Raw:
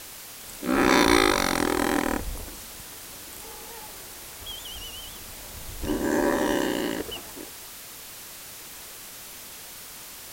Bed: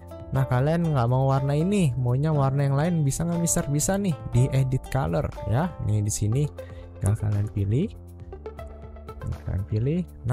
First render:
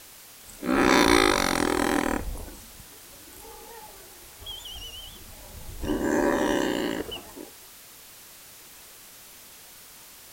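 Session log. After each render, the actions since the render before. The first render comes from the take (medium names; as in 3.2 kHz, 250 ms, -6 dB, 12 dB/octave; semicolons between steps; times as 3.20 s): noise print and reduce 6 dB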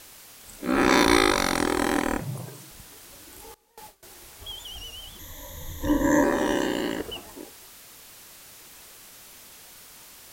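2.20–2.71 s: frequency shift +92 Hz; 3.54–4.03 s: gate with hold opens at -32 dBFS, closes at -39 dBFS; 5.19–6.24 s: rippled EQ curve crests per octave 1.1, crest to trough 16 dB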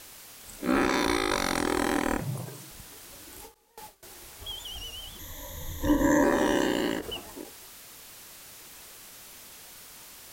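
peak limiter -12.5 dBFS, peak gain reduction 9.5 dB; endings held to a fixed fall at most 200 dB/s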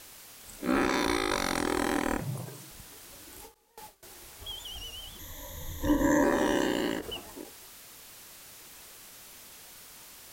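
trim -2 dB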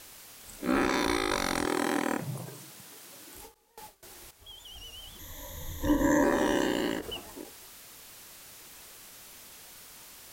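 1.65–3.35 s: high-pass 120 Hz 24 dB/octave; 4.31–5.41 s: fade in, from -12 dB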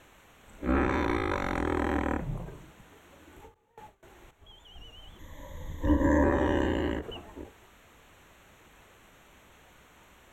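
octave divider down 2 oct, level -1 dB; boxcar filter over 9 samples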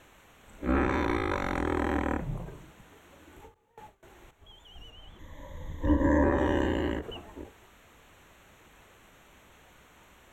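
4.90–6.38 s: treble shelf 5.6 kHz -8 dB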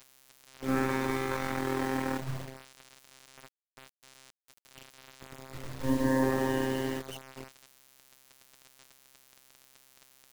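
robot voice 132 Hz; bit crusher 7-bit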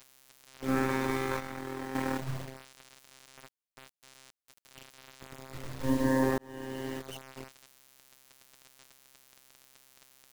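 1.40–1.95 s: gain -7.5 dB; 6.38–7.21 s: fade in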